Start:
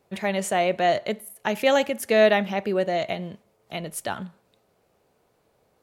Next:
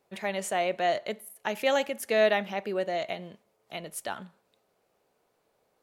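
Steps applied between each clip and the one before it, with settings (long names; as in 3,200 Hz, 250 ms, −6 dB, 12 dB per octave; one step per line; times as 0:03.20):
parametric band 73 Hz −10 dB 3 octaves
level −4.5 dB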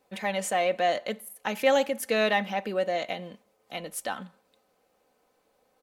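comb filter 3.9 ms, depth 49%
in parallel at −11 dB: soft clipping −28 dBFS, distortion −8 dB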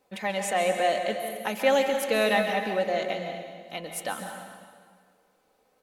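dense smooth reverb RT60 1.8 s, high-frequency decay 0.85×, pre-delay 120 ms, DRR 4.5 dB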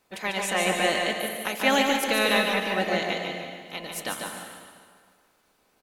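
ceiling on every frequency bin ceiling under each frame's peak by 14 dB
single-tap delay 146 ms −5.5 dB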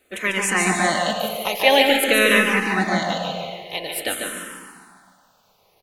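frequency shifter mixed with the dry sound −0.48 Hz
level +9 dB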